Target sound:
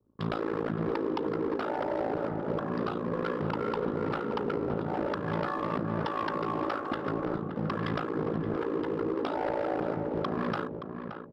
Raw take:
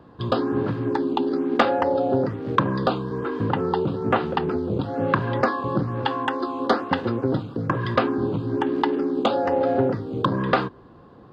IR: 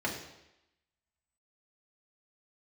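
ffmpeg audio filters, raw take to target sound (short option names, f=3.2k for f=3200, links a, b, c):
-filter_complex "[0:a]anlmdn=1.58,equalizer=f=1.3k:w=4.8:g=7.5,bandreject=f=4.3k:w=6,bandreject=f=132.2:t=h:w=4,bandreject=f=264.4:t=h:w=4,bandreject=f=396.6:t=h:w=4,bandreject=f=528.8:t=h:w=4,acompressor=threshold=-24dB:ratio=12,aresample=11025,asoftclip=type=hard:threshold=-27.5dB,aresample=44100,afreqshift=46,tremolo=f=55:d=0.947,asplit=2[a][b];[b]aeval=exprs='sgn(val(0))*max(abs(val(0))-0.00398,0)':c=same,volume=-5dB[c];[a][c]amix=inputs=2:normalize=0,asplit=2[d][e];[e]adelay=573,lowpass=f=1.3k:p=1,volume=-7dB,asplit=2[f][g];[g]adelay=573,lowpass=f=1.3k:p=1,volume=0.25,asplit=2[h][i];[i]adelay=573,lowpass=f=1.3k:p=1,volume=0.25[j];[d][f][h][j]amix=inputs=4:normalize=0,adynamicequalizer=threshold=0.00708:dfrequency=1800:dqfactor=0.7:tfrequency=1800:tqfactor=0.7:attack=5:release=100:ratio=0.375:range=1.5:mode=cutabove:tftype=highshelf"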